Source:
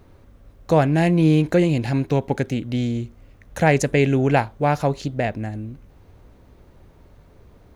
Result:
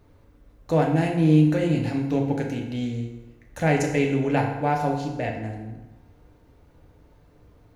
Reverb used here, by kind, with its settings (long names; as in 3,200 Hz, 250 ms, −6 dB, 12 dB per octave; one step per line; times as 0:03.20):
feedback delay network reverb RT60 1.1 s, low-frequency decay 0.85×, high-frequency decay 0.7×, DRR 0 dB
level −7.5 dB